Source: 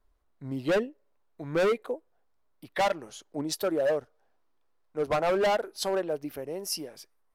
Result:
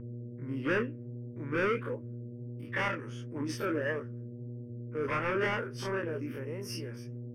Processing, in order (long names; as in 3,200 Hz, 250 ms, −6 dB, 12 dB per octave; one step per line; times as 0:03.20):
every bin's largest magnitude spread in time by 60 ms
noise gate with hold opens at −56 dBFS
low-shelf EQ 160 Hz −10.5 dB
in parallel at −4 dB: gain into a clipping stage and back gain 24.5 dB
on the sum: hum with harmonics 120 Hz, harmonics 6, −36 dBFS −5 dB per octave
flanger 1.5 Hz, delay 3.8 ms, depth 9.7 ms, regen −68%
Savitzky-Golay smoothing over 15 samples
phaser with its sweep stopped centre 1,700 Hz, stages 4